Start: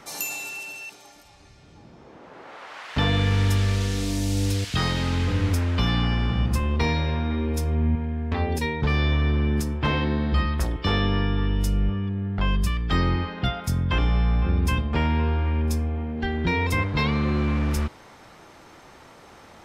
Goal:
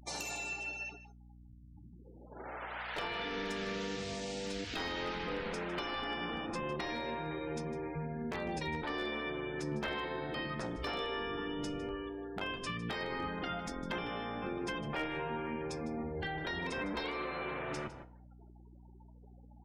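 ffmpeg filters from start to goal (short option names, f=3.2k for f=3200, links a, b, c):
-af "agate=range=-7dB:threshold=-44dB:ratio=16:detection=peak,bandreject=f=1.1k:w=15,afftfilt=real='re*lt(hypot(re,im),0.224)':imag='im*lt(hypot(re,im),0.224)':win_size=1024:overlap=0.75,lowpass=7.9k,afftfilt=real='re*gte(hypot(re,im),0.00794)':imag='im*gte(hypot(re,im),0.00794)':win_size=1024:overlap=0.75,highshelf=f=2.5k:g=-2,acompressor=threshold=-35dB:ratio=3,flanger=delay=5.4:depth=9.8:regen=74:speed=0.14:shape=sinusoidal,aeval=exprs='0.0266*(abs(mod(val(0)/0.0266+3,4)-2)-1)':c=same,aeval=exprs='val(0)+0.00126*(sin(2*PI*60*n/s)+sin(2*PI*2*60*n/s)/2+sin(2*PI*3*60*n/s)/3+sin(2*PI*4*60*n/s)/4+sin(2*PI*5*60*n/s)/5)':c=same,aecho=1:1:155:0.168,adynamicequalizer=threshold=0.00158:dfrequency=3400:dqfactor=0.7:tfrequency=3400:tqfactor=0.7:attack=5:release=100:ratio=0.375:range=2.5:mode=cutabove:tftype=highshelf,volume=3.5dB"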